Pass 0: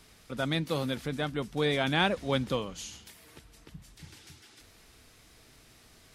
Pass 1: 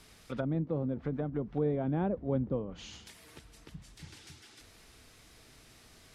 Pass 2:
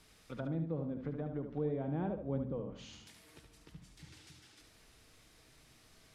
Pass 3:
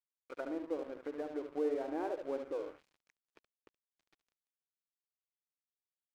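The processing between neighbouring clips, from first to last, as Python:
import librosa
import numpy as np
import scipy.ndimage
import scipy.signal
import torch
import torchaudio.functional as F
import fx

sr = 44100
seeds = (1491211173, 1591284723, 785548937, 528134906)

y1 = fx.env_lowpass_down(x, sr, base_hz=510.0, full_db=-28.5)
y2 = fx.echo_feedback(y1, sr, ms=73, feedback_pct=28, wet_db=-7.0)
y2 = fx.room_shoebox(y2, sr, seeds[0], volume_m3=1900.0, walls='furnished', distance_m=0.54)
y2 = y2 * librosa.db_to_amplitude(-6.5)
y3 = fx.brickwall_bandpass(y2, sr, low_hz=280.0, high_hz=2600.0)
y3 = np.sign(y3) * np.maximum(np.abs(y3) - 10.0 ** (-56.0 / 20.0), 0.0)
y3 = y3 * librosa.db_to_amplitude(4.0)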